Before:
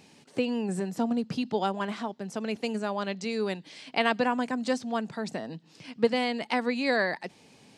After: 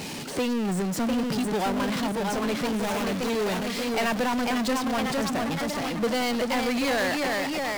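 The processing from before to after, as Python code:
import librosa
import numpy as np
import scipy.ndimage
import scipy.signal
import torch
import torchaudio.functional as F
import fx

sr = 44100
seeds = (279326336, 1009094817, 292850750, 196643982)

y = fx.dead_time(x, sr, dead_ms=0.29, at=(2.66, 3.3))
y = fx.echo_pitch(y, sr, ms=722, semitones=1, count=3, db_per_echo=-6.0)
y = fx.power_curve(y, sr, exponent=0.35)
y = y * librosa.db_to_amplitude(-8.5)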